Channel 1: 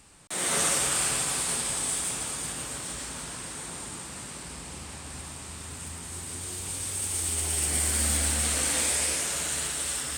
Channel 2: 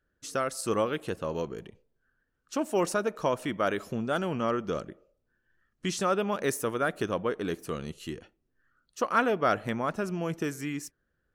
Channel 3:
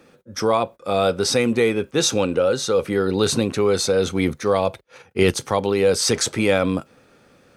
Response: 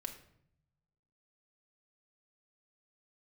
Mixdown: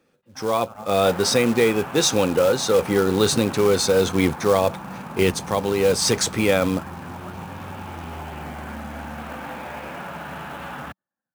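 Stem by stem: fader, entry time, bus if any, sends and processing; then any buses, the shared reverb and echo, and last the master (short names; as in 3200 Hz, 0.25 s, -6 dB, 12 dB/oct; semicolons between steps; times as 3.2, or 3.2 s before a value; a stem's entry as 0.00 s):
+1.5 dB, 0.75 s, bus A, no send, dry
-9.5 dB, 0.00 s, bus A, no send, spectral gate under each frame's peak -10 dB weak; cascading flanger falling 0.46 Hz
-13.0 dB, 0.00 s, no bus, no send, AGC gain up to 6 dB
bus A: 0.0 dB, speaker cabinet 120–2100 Hz, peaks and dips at 190 Hz +7 dB, 310 Hz -4 dB, 430 Hz -7 dB, 840 Hz +6 dB, 2000 Hz -9 dB; compressor 10:1, threshold -40 dBFS, peak gain reduction 13.5 dB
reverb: off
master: AGC gain up to 10 dB; short-mantissa float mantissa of 2-bit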